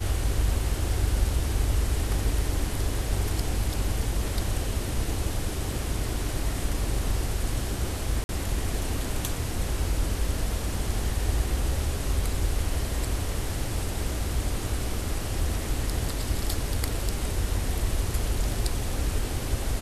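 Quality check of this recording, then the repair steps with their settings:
8.24–8.29 s: dropout 51 ms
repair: interpolate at 8.24 s, 51 ms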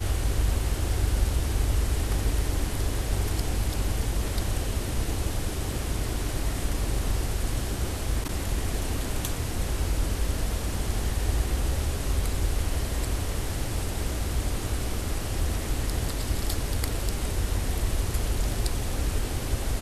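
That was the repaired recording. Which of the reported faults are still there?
nothing left

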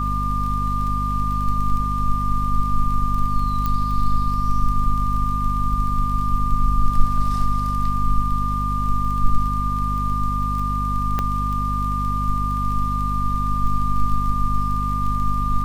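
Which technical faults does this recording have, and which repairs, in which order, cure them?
crackle 25 per s -28 dBFS
hum 50 Hz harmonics 5 -24 dBFS
whine 1.2 kHz -23 dBFS
3.66 s: pop -11 dBFS
11.19 s: pop -10 dBFS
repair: de-click; de-hum 50 Hz, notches 5; band-stop 1.2 kHz, Q 30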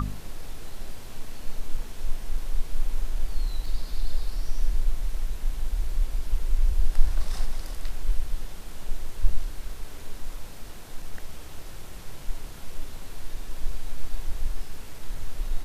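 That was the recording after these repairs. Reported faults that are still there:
3.66 s: pop

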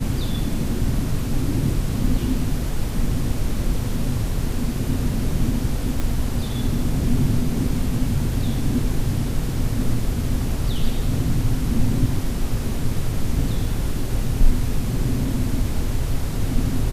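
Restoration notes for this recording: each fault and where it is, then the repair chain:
6.00 s: pop -12 dBFS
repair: de-click

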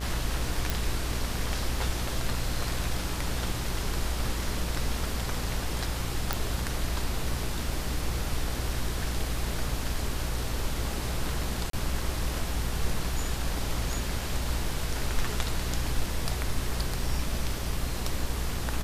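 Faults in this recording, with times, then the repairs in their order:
buzz 60 Hz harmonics 31 -34 dBFS
0.70 s: pop
6.33 s: pop
11.70–11.73 s: dropout 33 ms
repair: de-click; de-hum 60 Hz, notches 31; interpolate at 11.70 s, 33 ms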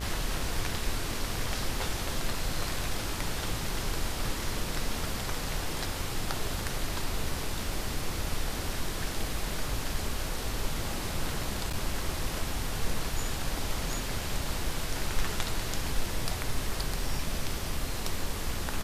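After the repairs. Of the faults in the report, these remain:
nothing left

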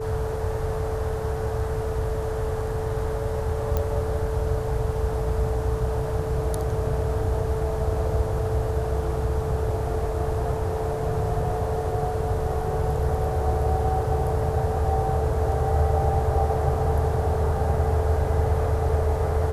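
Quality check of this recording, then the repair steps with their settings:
whine 440 Hz -29 dBFS
3.77 s: pop -12 dBFS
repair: de-click; band-stop 440 Hz, Q 30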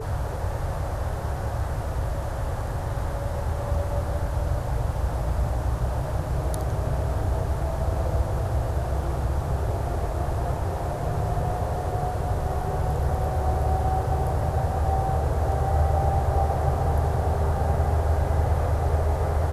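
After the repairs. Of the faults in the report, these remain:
nothing left

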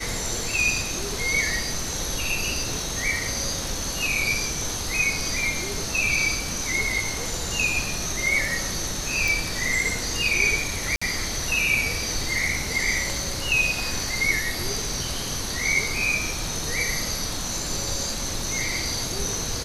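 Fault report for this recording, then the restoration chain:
9.28 s: pop
10.96–11.02 s: dropout 55 ms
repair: de-click; interpolate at 10.96 s, 55 ms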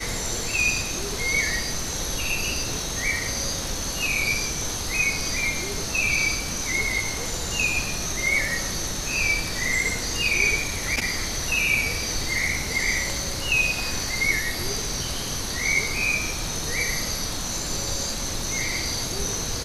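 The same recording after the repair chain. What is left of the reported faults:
nothing left

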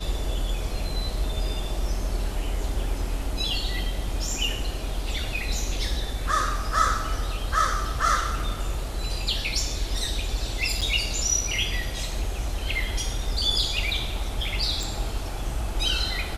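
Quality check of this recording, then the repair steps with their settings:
10.81–10.82 s: dropout 6.2 ms
14.83 s: pop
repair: de-click; interpolate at 10.81 s, 6.2 ms

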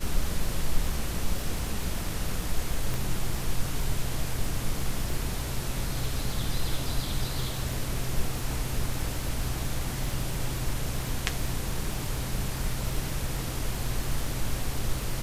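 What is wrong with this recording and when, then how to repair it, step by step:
crackle 32 per s -32 dBFS
2.94 s: pop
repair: de-click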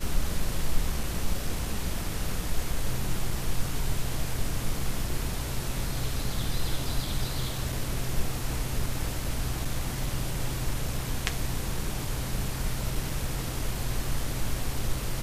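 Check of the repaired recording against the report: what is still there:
2.94 s: pop

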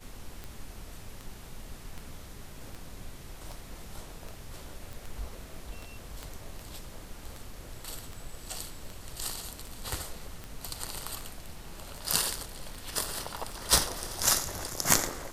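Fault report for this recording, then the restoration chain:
tick 78 rpm -26 dBFS
4.93 s: pop
6.23 s: pop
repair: de-click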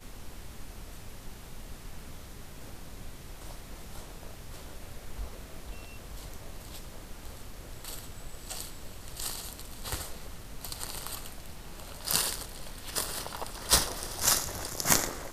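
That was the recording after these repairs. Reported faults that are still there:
6.23 s: pop

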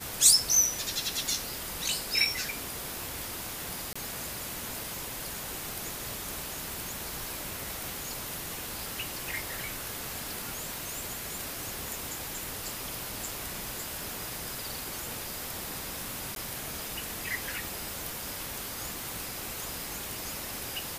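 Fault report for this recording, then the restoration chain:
3.93–3.96 s: dropout 25 ms
11.88 s: pop
16.35–16.36 s: dropout 12 ms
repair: de-click; interpolate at 3.93 s, 25 ms; interpolate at 16.35 s, 12 ms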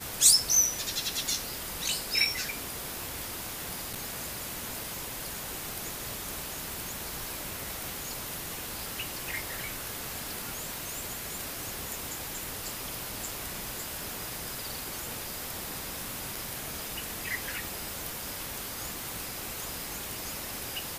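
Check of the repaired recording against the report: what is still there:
nothing left

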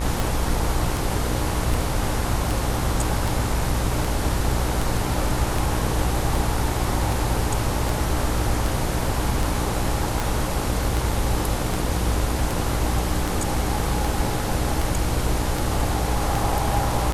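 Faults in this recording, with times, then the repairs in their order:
buzz 60 Hz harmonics 38 -27 dBFS
tick 78 rpm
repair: de-click; de-hum 60 Hz, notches 38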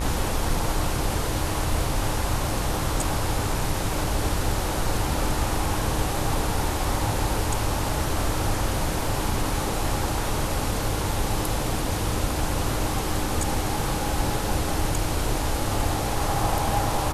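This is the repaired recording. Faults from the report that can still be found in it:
nothing left

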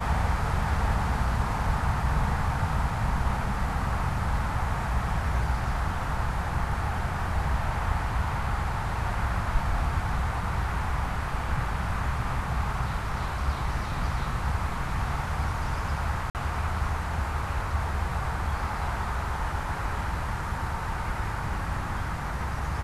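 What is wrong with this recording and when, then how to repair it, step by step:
16.30–16.35 s: dropout 48 ms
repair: interpolate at 16.30 s, 48 ms

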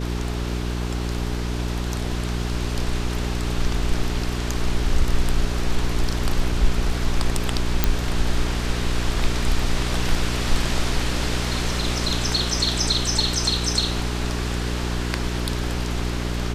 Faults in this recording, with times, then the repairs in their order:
hum 60 Hz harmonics 7 -26 dBFS
7.84 s: pop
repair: de-click; de-hum 60 Hz, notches 7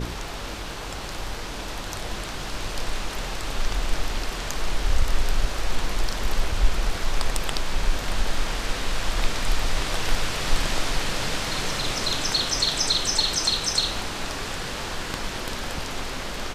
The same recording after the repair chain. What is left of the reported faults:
nothing left

